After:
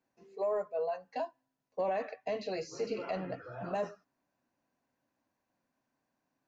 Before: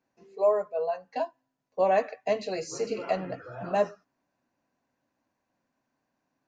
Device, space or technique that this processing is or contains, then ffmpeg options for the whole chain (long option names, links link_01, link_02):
de-esser from a sidechain: -filter_complex "[0:a]asplit=2[link_01][link_02];[link_02]highpass=frequency=5500:poles=1,apad=whole_len=285377[link_03];[link_01][link_03]sidechaincompress=threshold=-44dB:ratio=8:attack=4.3:release=20,asettb=1/sr,asplit=3[link_04][link_05][link_06];[link_04]atrim=end=1.814[link_07];[link_05]atrim=start=1.81:end=3.63,asetpts=PTS-STARTPTS,afade=type=in:duration=0.004:curve=qsin,afade=type=out:start_time=1.816:duration=0.004:curve=qsin,lowpass=frequency=6000:width=0.5412,lowpass=frequency=6000:width=1.3066[link_08];[link_06]atrim=start=3.626[link_09];[link_07][link_08]acrossfade=duration=0.004:curve1=hsin:curve2=qsin[link_10];[link_10][link_09]acrossfade=duration=0.004:curve1=qsin:curve2=hsin,volume=-3.5dB"